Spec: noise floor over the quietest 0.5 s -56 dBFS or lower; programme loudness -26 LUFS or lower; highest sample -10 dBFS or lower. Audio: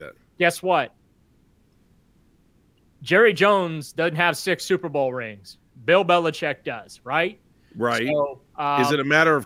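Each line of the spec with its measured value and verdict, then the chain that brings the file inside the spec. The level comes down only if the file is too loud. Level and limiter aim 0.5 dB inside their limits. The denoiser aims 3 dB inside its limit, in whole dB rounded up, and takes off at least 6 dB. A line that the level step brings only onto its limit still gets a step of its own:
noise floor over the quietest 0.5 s -60 dBFS: pass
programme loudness -21.5 LUFS: fail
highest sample -3.5 dBFS: fail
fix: trim -5 dB; peak limiter -10.5 dBFS

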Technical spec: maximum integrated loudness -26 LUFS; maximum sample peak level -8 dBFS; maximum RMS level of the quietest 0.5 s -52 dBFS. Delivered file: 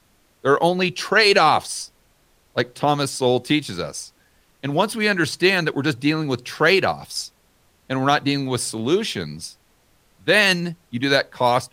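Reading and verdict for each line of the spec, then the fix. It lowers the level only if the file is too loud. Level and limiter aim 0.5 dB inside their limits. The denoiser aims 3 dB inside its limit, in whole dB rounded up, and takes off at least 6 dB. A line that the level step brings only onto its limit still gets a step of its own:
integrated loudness -20.0 LUFS: fail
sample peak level -4.0 dBFS: fail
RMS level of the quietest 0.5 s -60 dBFS: pass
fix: trim -6.5 dB

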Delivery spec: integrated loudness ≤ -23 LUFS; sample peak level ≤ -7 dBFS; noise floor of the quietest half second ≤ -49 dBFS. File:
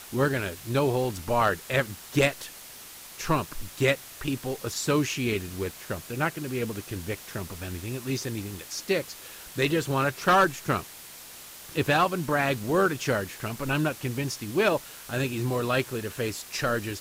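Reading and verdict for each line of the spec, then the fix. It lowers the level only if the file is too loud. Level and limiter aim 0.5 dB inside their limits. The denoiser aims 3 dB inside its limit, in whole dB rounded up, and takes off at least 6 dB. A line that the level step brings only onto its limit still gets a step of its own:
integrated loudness -27.5 LUFS: pass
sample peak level -12.5 dBFS: pass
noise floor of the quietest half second -45 dBFS: fail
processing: noise reduction 7 dB, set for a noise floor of -45 dBFS

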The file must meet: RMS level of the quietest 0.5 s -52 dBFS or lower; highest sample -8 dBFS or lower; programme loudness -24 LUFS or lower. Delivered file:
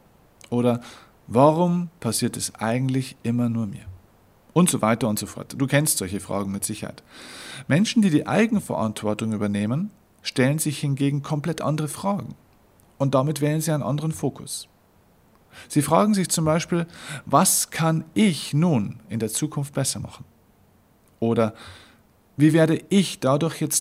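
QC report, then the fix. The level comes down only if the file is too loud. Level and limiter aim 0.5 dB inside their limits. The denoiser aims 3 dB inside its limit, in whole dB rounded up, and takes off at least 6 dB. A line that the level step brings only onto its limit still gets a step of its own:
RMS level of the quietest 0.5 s -58 dBFS: pass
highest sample -3.0 dBFS: fail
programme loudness -23.0 LUFS: fail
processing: trim -1.5 dB; peak limiter -8.5 dBFS

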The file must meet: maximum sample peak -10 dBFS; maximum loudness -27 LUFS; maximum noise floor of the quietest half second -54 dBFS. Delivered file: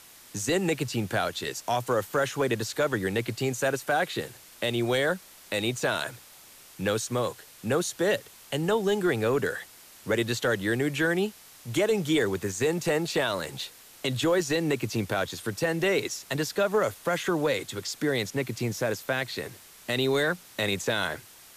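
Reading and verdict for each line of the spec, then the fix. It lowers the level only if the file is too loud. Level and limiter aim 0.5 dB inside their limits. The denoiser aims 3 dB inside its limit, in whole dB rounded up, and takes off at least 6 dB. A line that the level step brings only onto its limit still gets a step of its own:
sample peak -16.0 dBFS: pass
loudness -28.0 LUFS: pass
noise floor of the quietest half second -51 dBFS: fail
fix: noise reduction 6 dB, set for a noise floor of -51 dBFS

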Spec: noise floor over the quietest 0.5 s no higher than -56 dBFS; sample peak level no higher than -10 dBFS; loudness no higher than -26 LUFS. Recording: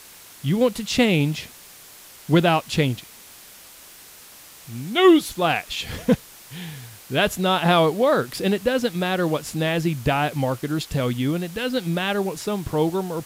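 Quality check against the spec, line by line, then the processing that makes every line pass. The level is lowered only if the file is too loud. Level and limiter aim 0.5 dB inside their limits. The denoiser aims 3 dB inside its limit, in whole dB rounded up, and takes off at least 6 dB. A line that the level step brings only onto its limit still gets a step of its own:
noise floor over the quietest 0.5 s -45 dBFS: fail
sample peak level -4.5 dBFS: fail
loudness -22.0 LUFS: fail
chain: noise reduction 10 dB, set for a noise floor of -45 dBFS; trim -4.5 dB; peak limiter -10.5 dBFS

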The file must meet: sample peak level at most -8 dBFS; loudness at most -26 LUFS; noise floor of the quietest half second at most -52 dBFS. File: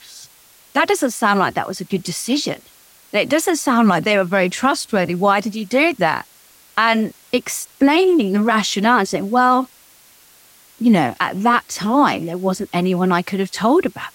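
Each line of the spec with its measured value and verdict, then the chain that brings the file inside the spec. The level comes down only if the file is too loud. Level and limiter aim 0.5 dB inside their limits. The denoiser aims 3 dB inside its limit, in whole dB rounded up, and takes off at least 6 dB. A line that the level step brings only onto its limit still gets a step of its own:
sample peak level -4.0 dBFS: fail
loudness -17.5 LUFS: fail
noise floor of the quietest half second -49 dBFS: fail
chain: trim -9 dB

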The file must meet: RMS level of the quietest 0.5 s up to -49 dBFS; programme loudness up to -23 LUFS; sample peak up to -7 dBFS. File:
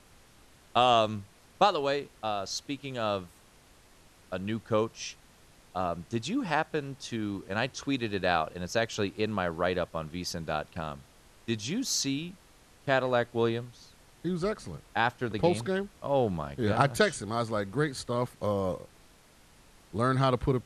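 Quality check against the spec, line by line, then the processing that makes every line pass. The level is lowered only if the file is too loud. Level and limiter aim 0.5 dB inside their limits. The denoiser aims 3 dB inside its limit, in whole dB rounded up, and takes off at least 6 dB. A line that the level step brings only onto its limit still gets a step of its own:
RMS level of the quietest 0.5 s -58 dBFS: pass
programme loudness -30.5 LUFS: pass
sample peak -8.5 dBFS: pass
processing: none needed

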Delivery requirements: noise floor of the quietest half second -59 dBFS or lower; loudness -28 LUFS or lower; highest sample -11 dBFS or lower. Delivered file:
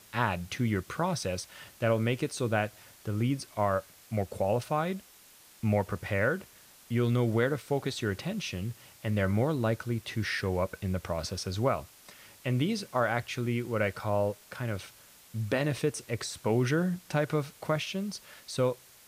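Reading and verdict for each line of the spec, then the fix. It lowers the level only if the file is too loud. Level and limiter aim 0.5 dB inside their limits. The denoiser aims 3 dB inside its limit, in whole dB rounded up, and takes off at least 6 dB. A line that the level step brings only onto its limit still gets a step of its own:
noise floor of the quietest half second -56 dBFS: fail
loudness -31.0 LUFS: pass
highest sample -14.0 dBFS: pass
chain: noise reduction 6 dB, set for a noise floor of -56 dBFS

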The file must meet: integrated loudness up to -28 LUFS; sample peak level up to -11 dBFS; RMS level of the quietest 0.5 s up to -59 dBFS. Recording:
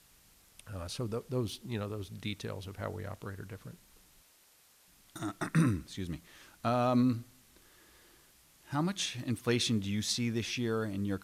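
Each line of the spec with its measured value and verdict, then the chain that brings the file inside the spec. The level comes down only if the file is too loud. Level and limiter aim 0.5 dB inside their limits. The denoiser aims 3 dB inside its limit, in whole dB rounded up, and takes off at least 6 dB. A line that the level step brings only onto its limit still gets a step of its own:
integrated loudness -34.0 LUFS: pass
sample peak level -17.0 dBFS: pass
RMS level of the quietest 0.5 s -64 dBFS: pass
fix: none needed

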